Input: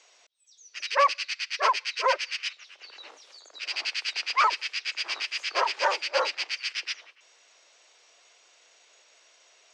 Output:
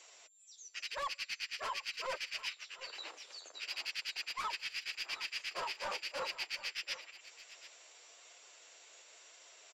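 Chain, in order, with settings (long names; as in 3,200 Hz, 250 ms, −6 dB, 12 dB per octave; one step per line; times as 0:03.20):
soft clipping −23 dBFS, distortion −9 dB
reversed playback
downward compressor 6 to 1, threshold −38 dBFS, peak gain reduction 12 dB
reversed playback
flanger 0.96 Hz, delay 5.3 ms, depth 8.4 ms, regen −19%
steady tone 7,300 Hz −65 dBFS
transient designer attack +1 dB, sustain −6 dB
on a send: single-tap delay 736 ms −15.5 dB
on the sum: level +3 dB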